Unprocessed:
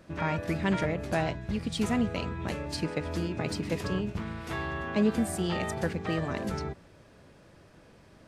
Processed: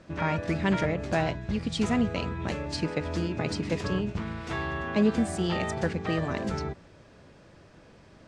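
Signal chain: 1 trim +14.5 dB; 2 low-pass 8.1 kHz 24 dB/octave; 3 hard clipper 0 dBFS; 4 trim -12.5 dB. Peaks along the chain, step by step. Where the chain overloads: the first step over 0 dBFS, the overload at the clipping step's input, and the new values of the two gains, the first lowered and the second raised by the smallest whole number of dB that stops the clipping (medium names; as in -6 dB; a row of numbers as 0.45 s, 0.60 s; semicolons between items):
-2.0 dBFS, -2.0 dBFS, -2.0 dBFS, -14.5 dBFS; nothing clips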